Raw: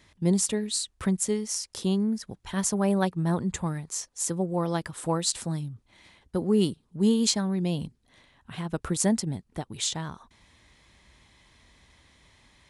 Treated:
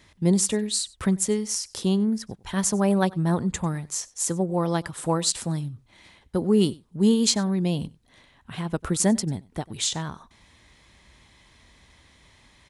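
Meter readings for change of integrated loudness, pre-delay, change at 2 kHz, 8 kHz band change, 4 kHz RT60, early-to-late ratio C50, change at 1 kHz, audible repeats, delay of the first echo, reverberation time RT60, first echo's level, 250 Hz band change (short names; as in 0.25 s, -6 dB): +3.0 dB, none, +3.0 dB, +3.0 dB, none, none, +3.0 dB, 1, 95 ms, none, -23.0 dB, +3.0 dB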